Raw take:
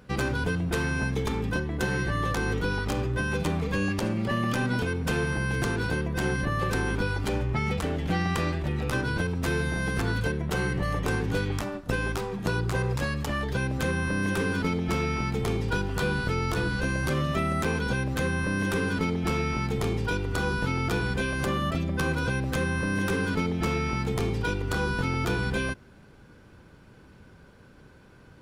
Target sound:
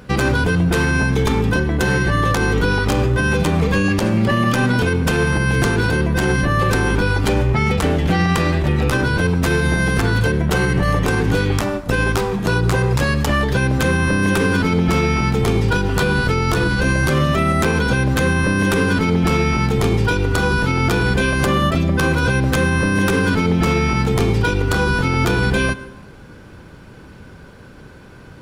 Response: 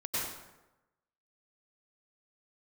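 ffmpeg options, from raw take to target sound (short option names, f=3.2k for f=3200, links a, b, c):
-filter_complex "[0:a]asplit=2[a][b];[1:a]atrim=start_sample=2205[c];[b][c]afir=irnorm=-1:irlink=0,volume=-22.5dB[d];[a][d]amix=inputs=2:normalize=0,alimiter=level_in=18dB:limit=-1dB:release=50:level=0:latency=1,volume=-6.5dB"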